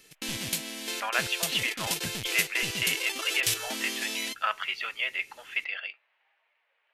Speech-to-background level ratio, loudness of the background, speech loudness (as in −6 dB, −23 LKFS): 0.5 dB, −31.0 LKFS, −30.5 LKFS